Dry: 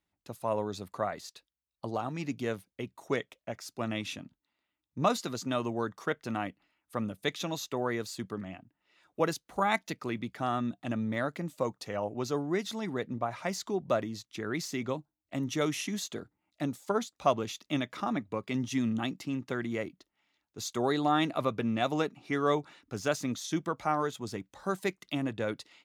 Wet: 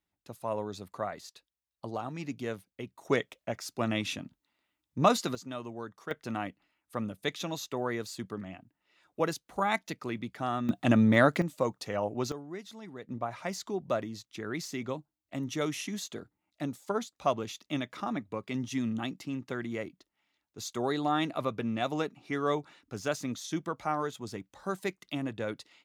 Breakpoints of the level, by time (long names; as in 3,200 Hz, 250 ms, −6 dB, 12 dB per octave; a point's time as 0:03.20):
−2.5 dB
from 0:03.05 +3.5 dB
from 0:05.35 −8 dB
from 0:06.11 −1 dB
from 0:10.69 +10 dB
from 0:11.42 +2 dB
from 0:12.32 −10.5 dB
from 0:13.09 −2 dB